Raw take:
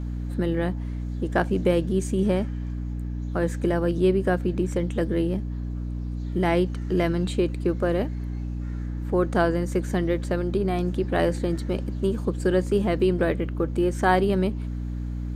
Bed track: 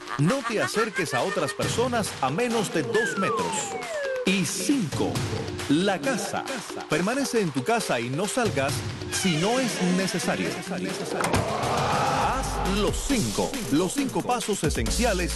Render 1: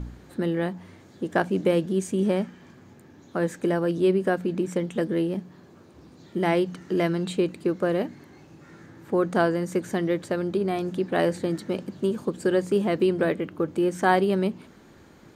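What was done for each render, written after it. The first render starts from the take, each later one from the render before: de-hum 60 Hz, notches 5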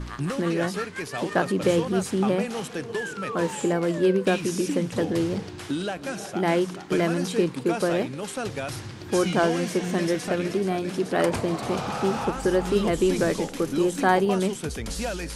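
add bed track -6.5 dB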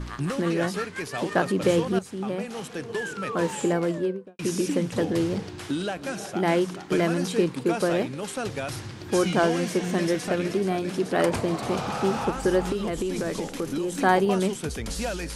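1.99–3.06 fade in, from -12.5 dB; 3.74–4.39 studio fade out; 12.72–14.02 compressor, threshold -24 dBFS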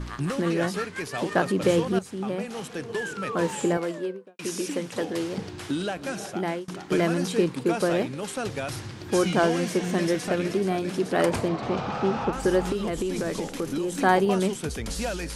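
3.77–5.38 HPF 460 Hz 6 dB/oct; 6.27–6.68 fade out linear, to -23.5 dB; 11.48–12.33 air absorption 140 m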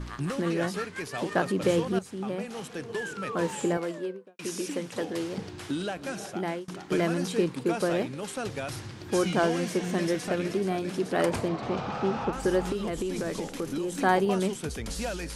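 gain -3 dB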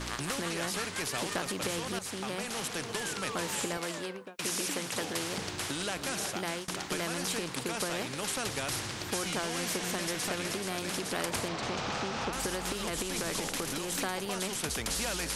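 compressor, threshold -27 dBFS, peak gain reduction 10 dB; spectral compressor 2:1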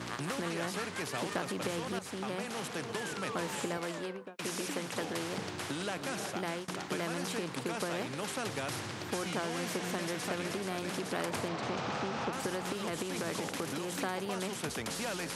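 HPF 97 Hz 24 dB/oct; high shelf 2800 Hz -8.5 dB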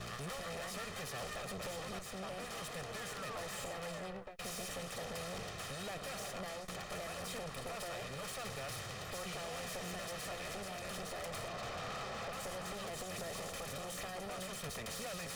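minimum comb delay 1.6 ms; soft clip -39 dBFS, distortion -10 dB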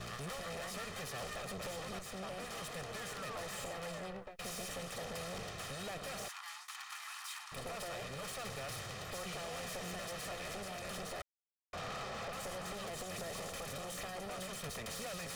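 6.28–7.52 steep high-pass 860 Hz 72 dB/oct; 11.22–11.73 mute

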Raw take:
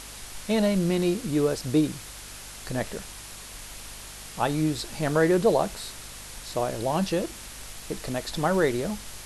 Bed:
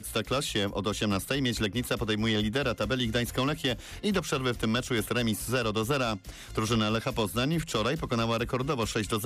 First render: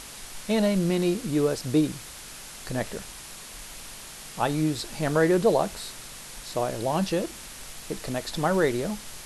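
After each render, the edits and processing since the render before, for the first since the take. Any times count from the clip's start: de-hum 50 Hz, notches 2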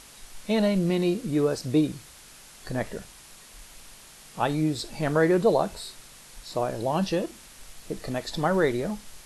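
noise print and reduce 7 dB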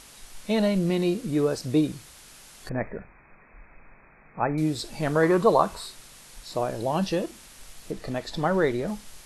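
2.69–4.58 brick-wall FIR low-pass 2600 Hz; 5.23–5.87 bell 1100 Hz +13.5 dB 0.5 oct; 7.91–8.88 high shelf 6600 Hz -8 dB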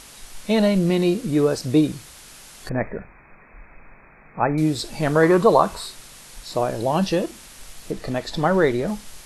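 gain +5 dB; limiter -3 dBFS, peak gain reduction 1.5 dB

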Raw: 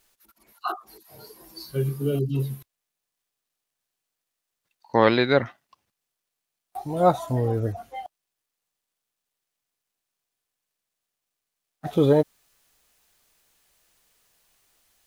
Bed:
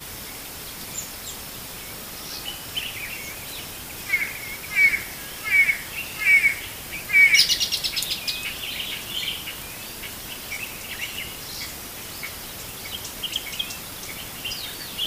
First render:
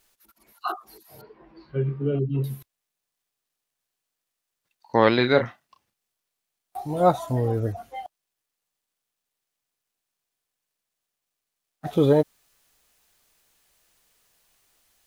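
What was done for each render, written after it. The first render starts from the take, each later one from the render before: 1.21–2.44 LPF 2500 Hz 24 dB/oct; 5.15–7.01 doubler 33 ms -8.5 dB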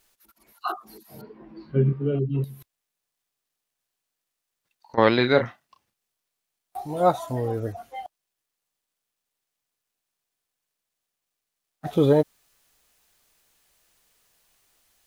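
0.76–1.93 bell 220 Hz +14 dB 1 oct; 2.44–4.98 compressor 3:1, threshold -40 dBFS; 6.86–7.99 low shelf 230 Hz -6.5 dB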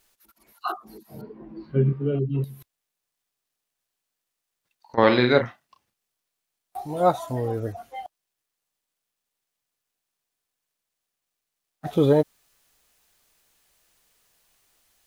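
0.77–1.64 tilt shelf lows +5 dB, about 870 Hz; 4.98–5.38 flutter echo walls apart 8.4 m, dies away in 0.36 s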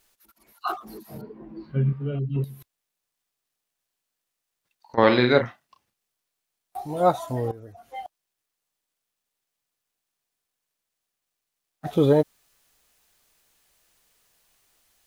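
0.67–1.18 G.711 law mismatch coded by mu; 1.72–2.36 bell 360 Hz -12 dB; 7.51–7.92 compressor 2:1, threshold -51 dBFS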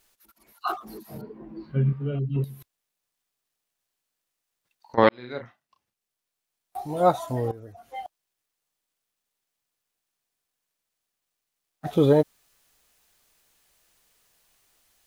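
5.09–6.8 fade in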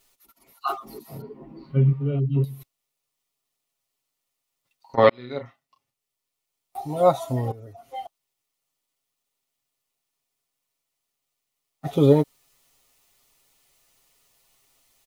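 notch 1600 Hz, Q 5.1; comb 7.4 ms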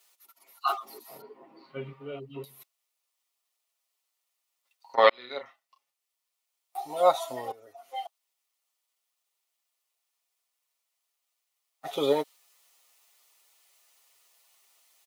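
dynamic EQ 3500 Hz, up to +4 dB, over -47 dBFS, Q 1.2; HPF 630 Hz 12 dB/oct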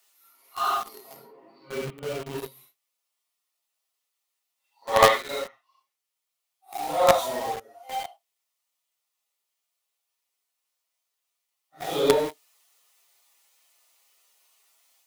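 phase scrambler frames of 0.2 s; in parallel at -7 dB: companded quantiser 2-bit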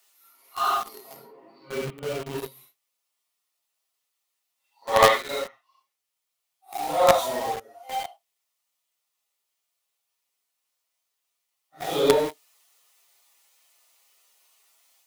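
gain +1.5 dB; limiter -2 dBFS, peak gain reduction 2.5 dB

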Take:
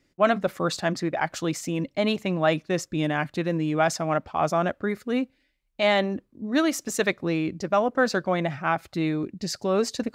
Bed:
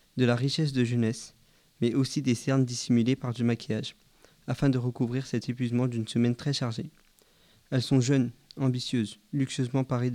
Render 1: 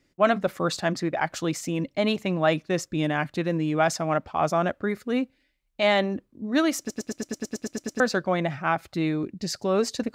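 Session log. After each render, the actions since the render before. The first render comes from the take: 6.79 stutter in place 0.11 s, 11 plays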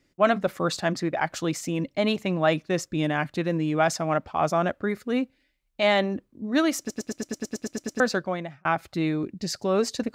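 8.11–8.65 fade out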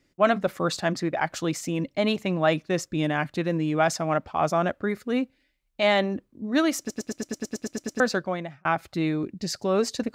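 nothing audible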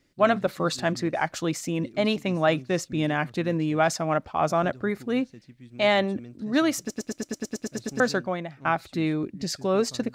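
add bed -18 dB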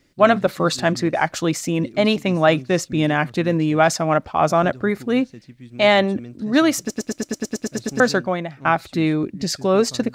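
gain +6.5 dB

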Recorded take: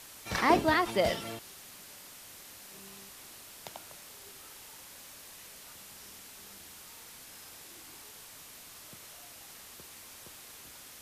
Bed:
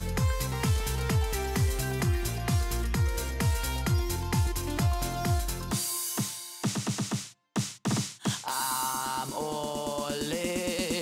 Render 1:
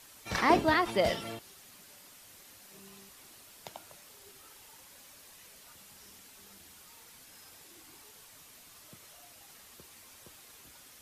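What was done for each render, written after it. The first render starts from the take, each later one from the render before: denoiser 6 dB, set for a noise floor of -51 dBFS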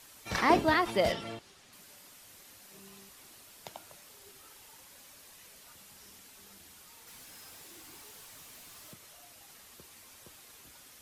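1.12–1.73 air absorption 57 m; 7.07–8.94 zero-crossing step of -54.5 dBFS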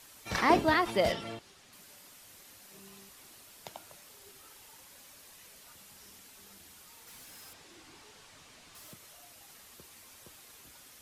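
7.53–8.75 air absorption 64 m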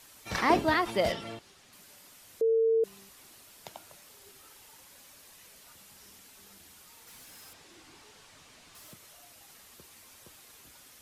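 2.41–2.84 bleep 451 Hz -21.5 dBFS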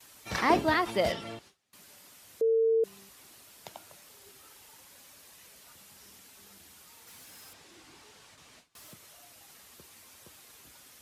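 gate with hold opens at -46 dBFS; HPF 44 Hz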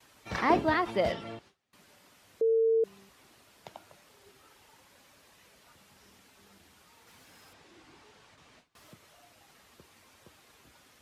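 LPF 2500 Hz 6 dB/oct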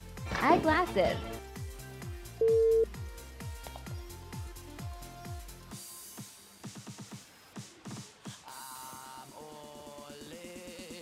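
add bed -15.5 dB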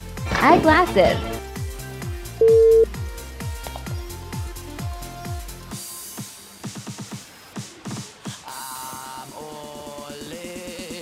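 gain +12 dB; limiter -2 dBFS, peak gain reduction 3 dB

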